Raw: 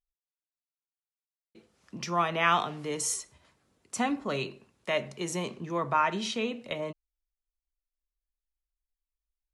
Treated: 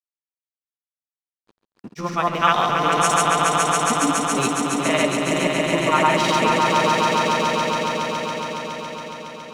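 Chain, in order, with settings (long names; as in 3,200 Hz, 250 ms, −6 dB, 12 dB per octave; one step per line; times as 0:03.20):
dead-zone distortion −48.5 dBFS
granular cloud, pitch spread up and down by 0 semitones
echo that builds up and dies away 139 ms, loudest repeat 5, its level −4.5 dB
level +9 dB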